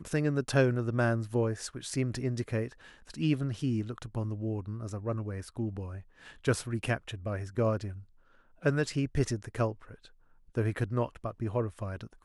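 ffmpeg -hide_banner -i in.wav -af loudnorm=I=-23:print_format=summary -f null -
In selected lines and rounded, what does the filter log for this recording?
Input Integrated:    -32.9 LUFS
Input True Peak:     -11.8 dBTP
Input LRA:             2.9 LU
Input Threshold:     -43.4 LUFS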